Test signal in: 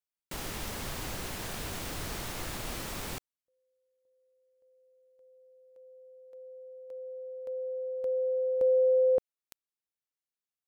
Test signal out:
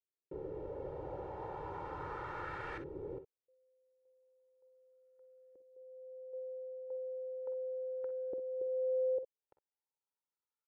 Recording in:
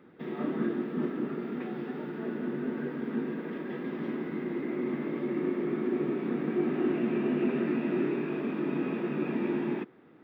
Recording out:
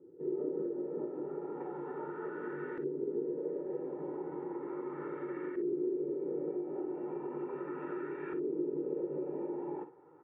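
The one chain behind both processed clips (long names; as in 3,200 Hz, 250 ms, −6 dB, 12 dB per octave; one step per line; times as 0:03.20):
high-pass filter 140 Hz 6 dB per octave
comb filter 2.2 ms, depth 91%
downward compressor 12 to 1, threshold −31 dBFS
auto-filter low-pass saw up 0.36 Hz 350–1,700 Hz
ambience of single reflections 48 ms −13 dB, 61 ms −14 dB
level −6 dB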